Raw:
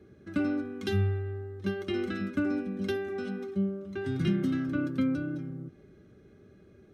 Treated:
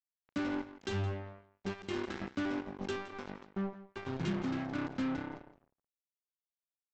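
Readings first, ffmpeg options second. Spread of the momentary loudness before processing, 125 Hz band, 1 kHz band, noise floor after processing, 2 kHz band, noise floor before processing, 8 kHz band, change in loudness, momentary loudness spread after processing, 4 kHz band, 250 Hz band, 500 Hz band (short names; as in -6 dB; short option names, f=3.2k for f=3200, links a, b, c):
7 LU, -8.5 dB, +1.0 dB, under -85 dBFS, -4.0 dB, -57 dBFS, n/a, -7.0 dB, 9 LU, -3.0 dB, -7.5 dB, -7.5 dB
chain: -af "bass=f=250:g=-2,treble=f=4k:g=-3,aresample=16000,acrusher=bits=4:mix=0:aa=0.5,aresample=44100,aecho=1:1:167:0.168,volume=-6.5dB"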